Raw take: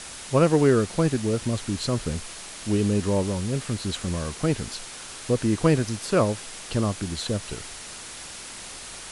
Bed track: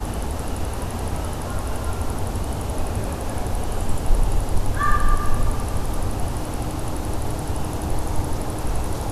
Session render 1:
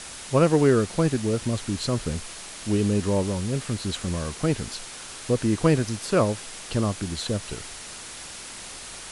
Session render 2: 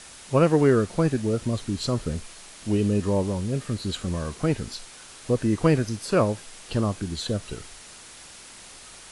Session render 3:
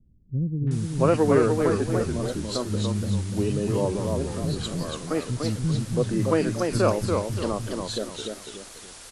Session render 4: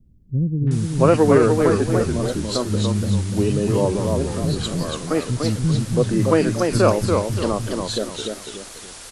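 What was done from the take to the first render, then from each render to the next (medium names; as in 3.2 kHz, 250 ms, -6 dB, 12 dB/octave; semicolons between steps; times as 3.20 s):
no audible change
noise print and reduce 6 dB
three bands offset in time lows, mids, highs 670/710 ms, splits 220/2500 Hz; modulated delay 290 ms, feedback 37%, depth 168 cents, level -4 dB
trim +5.5 dB; peak limiter -3 dBFS, peak gain reduction 2.5 dB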